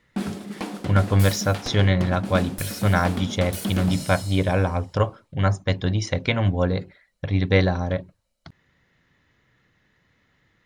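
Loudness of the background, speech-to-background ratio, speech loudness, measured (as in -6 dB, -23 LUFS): -31.5 LUFS, 8.5 dB, -23.0 LUFS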